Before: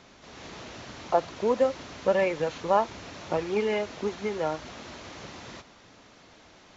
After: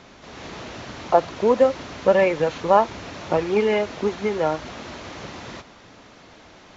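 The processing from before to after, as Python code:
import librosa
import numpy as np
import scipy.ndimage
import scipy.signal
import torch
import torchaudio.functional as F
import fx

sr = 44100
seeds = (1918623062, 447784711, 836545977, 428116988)

y = fx.high_shelf(x, sr, hz=4500.0, db=-5.5)
y = y * 10.0 ** (7.0 / 20.0)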